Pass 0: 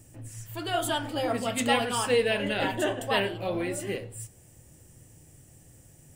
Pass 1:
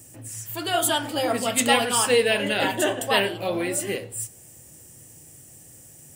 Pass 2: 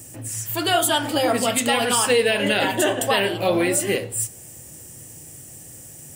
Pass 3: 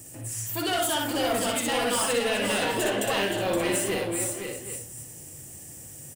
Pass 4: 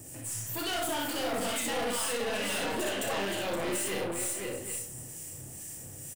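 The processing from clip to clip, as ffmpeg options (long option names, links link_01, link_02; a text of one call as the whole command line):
ffmpeg -i in.wav -af "highpass=frequency=160:poles=1,highshelf=frequency=5300:gain=8.5,volume=4.5dB" out.wav
ffmpeg -i in.wav -af "alimiter=limit=-15.5dB:level=0:latency=1:release=185,volume=6.5dB" out.wav
ffmpeg -i in.wav -filter_complex "[0:a]asoftclip=type=tanh:threshold=-18.5dB,asplit=2[link_01][link_02];[link_02]aecho=0:1:61|520|579|777:0.668|0.447|0.282|0.224[link_03];[link_01][link_03]amix=inputs=2:normalize=0,volume=-4.5dB" out.wav
ffmpeg -i in.wav -filter_complex "[0:a]acrossover=split=1400[link_01][link_02];[link_01]aeval=exprs='val(0)*(1-0.5/2+0.5/2*cos(2*PI*2.2*n/s))':channel_layout=same[link_03];[link_02]aeval=exprs='val(0)*(1-0.5/2-0.5/2*cos(2*PI*2.2*n/s))':channel_layout=same[link_04];[link_03][link_04]amix=inputs=2:normalize=0,aeval=exprs='(tanh(39.8*val(0)+0.2)-tanh(0.2))/39.8':channel_layout=same,asplit=2[link_05][link_06];[link_06]adelay=31,volume=-7dB[link_07];[link_05][link_07]amix=inputs=2:normalize=0,volume=2dB" out.wav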